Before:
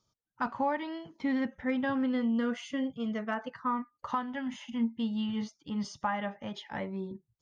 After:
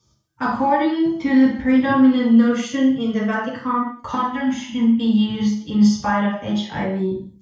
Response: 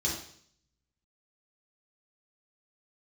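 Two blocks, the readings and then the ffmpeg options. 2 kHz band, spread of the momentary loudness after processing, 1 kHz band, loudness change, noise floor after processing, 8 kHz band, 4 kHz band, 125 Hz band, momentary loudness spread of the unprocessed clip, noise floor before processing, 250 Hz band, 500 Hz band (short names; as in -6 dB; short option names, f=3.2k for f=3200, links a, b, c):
+11.5 dB, 9 LU, +12.0 dB, +15.0 dB, -56 dBFS, n/a, +13.0 dB, +17.0 dB, 8 LU, -82 dBFS, +16.0 dB, +12.5 dB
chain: -filter_complex "[1:a]atrim=start_sample=2205,afade=t=out:st=0.3:d=0.01,atrim=end_sample=13671[a];[0:a][a]afir=irnorm=-1:irlink=0,volume=5.5dB"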